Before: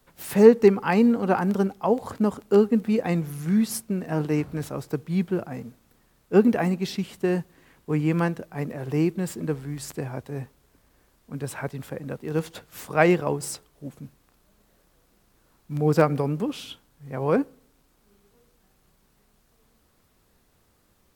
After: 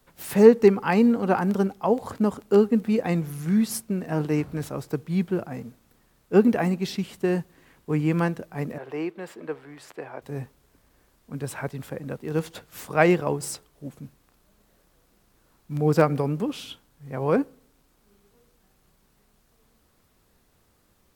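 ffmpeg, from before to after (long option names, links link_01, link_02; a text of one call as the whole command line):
ffmpeg -i in.wav -filter_complex "[0:a]asettb=1/sr,asplit=3[link_01][link_02][link_03];[link_01]atrim=end=8.784[link_04];[link_02]atrim=start=8.78:end=10.22,asetpts=PTS-STARTPTS,afade=type=in:duration=0.004:curve=qsin,afade=type=out:start_time=1.436:duration=0.004:curve=qsin,acrossover=split=360 3500:gain=0.1 1 0.178[link_05][link_06][link_07];[link_05][link_06][link_07]amix=inputs=3:normalize=0[link_08];[link_03]atrim=start=10.216[link_09];[link_04][link_08]acrossfade=duration=0.004:curve1=hsin:curve2=qsin[link_10];[link_10][link_09]acrossfade=duration=0.004:curve1=qsin:curve2=hsin" out.wav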